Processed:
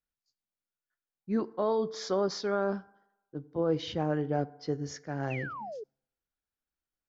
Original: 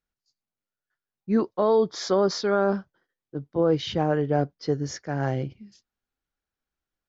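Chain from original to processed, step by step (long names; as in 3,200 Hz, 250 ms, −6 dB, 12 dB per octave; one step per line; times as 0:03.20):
feedback delay network reverb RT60 0.95 s, low-frequency decay 0.75×, high-frequency decay 0.45×, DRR 17 dB
sound drawn into the spectrogram fall, 0:05.30–0:05.84, 400–2,800 Hz −33 dBFS
level −7 dB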